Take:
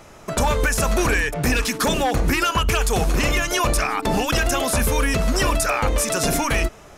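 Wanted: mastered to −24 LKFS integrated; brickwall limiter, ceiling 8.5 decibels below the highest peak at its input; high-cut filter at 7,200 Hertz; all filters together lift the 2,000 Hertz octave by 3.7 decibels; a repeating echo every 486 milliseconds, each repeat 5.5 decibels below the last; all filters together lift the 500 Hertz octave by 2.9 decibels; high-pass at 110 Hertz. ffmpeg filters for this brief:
ffmpeg -i in.wav -af "highpass=110,lowpass=7200,equalizer=frequency=500:width_type=o:gain=3.5,equalizer=frequency=2000:width_type=o:gain=4.5,alimiter=limit=-15.5dB:level=0:latency=1,aecho=1:1:486|972|1458|1944|2430|2916|3402:0.531|0.281|0.149|0.079|0.0419|0.0222|0.0118,volume=-1.5dB" out.wav

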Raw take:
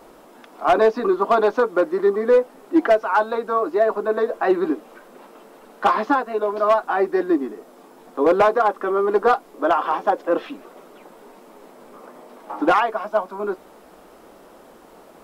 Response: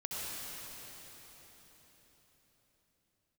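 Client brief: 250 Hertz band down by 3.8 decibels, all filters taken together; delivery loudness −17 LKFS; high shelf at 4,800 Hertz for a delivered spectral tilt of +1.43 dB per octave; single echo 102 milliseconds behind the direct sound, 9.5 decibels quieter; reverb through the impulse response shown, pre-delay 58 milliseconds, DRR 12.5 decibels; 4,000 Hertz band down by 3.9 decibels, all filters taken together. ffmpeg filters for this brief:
-filter_complex "[0:a]equalizer=frequency=250:width_type=o:gain=-6,equalizer=frequency=4000:width_type=o:gain=-4,highshelf=frequency=4800:gain=-3.5,aecho=1:1:102:0.335,asplit=2[link_01][link_02];[1:a]atrim=start_sample=2205,adelay=58[link_03];[link_02][link_03]afir=irnorm=-1:irlink=0,volume=-16dB[link_04];[link_01][link_04]amix=inputs=2:normalize=0,volume=4dB"

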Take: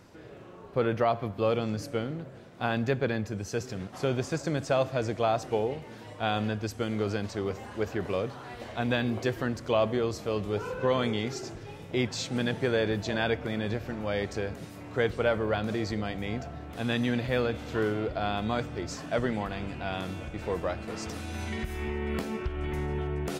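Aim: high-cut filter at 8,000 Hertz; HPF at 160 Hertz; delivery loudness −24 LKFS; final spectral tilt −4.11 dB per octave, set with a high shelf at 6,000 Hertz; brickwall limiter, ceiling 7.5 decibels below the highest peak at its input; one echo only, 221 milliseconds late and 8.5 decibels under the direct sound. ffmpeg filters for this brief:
ffmpeg -i in.wav -af "highpass=160,lowpass=8000,highshelf=frequency=6000:gain=5,alimiter=limit=-19.5dB:level=0:latency=1,aecho=1:1:221:0.376,volume=8.5dB" out.wav

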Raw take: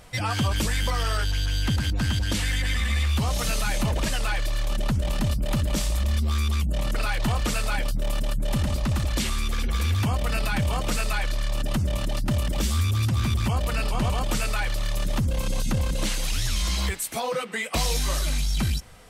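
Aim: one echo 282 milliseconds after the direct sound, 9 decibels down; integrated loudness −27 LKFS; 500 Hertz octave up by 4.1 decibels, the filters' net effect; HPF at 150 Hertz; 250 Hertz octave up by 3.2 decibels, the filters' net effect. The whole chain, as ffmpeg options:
ffmpeg -i in.wav -af "highpass=150,equalizer=frequency=250:width_type=o:gain=4.5,equalizer=frequency=500:width_type=o:gain=4,aecho=1:1:282:0.355,volume=0.5dB" out.wav

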